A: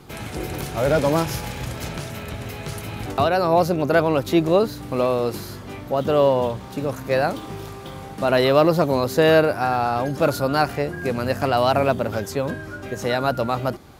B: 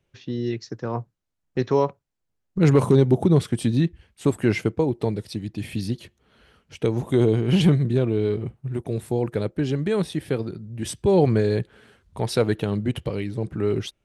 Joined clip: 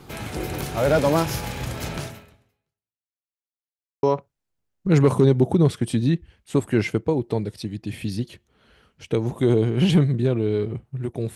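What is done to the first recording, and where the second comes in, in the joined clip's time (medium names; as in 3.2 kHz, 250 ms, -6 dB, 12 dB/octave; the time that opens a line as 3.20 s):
A
2.05–3.23 s: fade out exponential
3.23–4.03 s: mute
4.03 s: go over to B from 1.74 s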